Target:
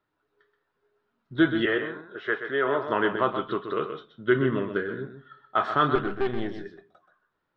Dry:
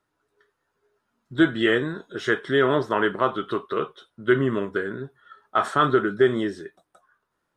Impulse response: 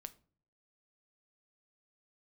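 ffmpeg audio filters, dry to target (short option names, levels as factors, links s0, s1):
-filter_complex "[0:a]asettb=1/sr,asplit=3[s0][s1][s2];[s0]atrim=end=5.954[s3];[s1]atrim=start=5.95:end=6.54,asetpts=PTS-STARTPTS,afade=t=in:d=0.004:c=qsin,afade=t=out:st=0.586:d=0.004:c=qsin,aeval=exprs='(tanh(8.91*val(0)+0.75)-tanh(0.75))/8.91':c=same[s4];[s2]atrim=start=6.536[s5];[s3][s4]acrossfade=d=0.004:c1=hsin:c2=qsin[s6];[s6][s5]acrossfade=d=0.004:c1=qsin:c2=hsin,lowpass=f=4400:w=0.5412,lowpass=f=4400:w=1.3066,asettb=1/sr,asplit=3[s7][s8][s9];[s7]atrim=end=1.654[s10];[s8]atrim=start=1.65:end=2.88,asetpts=PTS-STARTPTS,afade=t=in:d=0.004:c=qsin,afade=t=out:st=1.226:d=0.004:c=qsin,acrossover=split=400 2800:gain=0.224 1 0.141[s11][s12][s13];[s11][s12][s13]amix=inputs=3:normalize=0[s14];[s9]atrim=start=2.876[s15];[s10][s14]acrossfade=d=0.004:c1=hsin:c2=qsin[s16];[s16][s15]acrossfade=d=0.004:c1=qsin:c2=hsin,asplit=2[s17][s18];[1:a]atrim=start_sample=2205,adelay=128[s19];[s18][s19]afir=irnorm=-1:irlink=0,volume=0.708[s20];[s17][s20]amix=inputs=2:normalize=0,volume=0.75"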